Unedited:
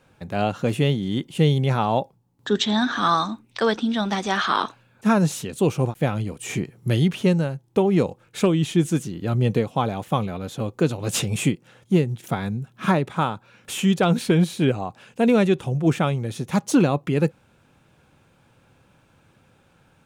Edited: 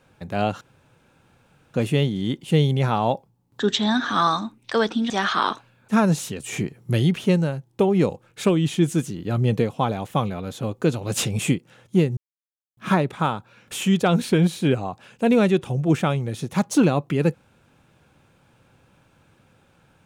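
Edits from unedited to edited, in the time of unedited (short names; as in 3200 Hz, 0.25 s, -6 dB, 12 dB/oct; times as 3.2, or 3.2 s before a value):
0.61 insert room tone 1.13 s
3.97–4.23 cut
5.56–6.4 cut
12.14–12.74 mute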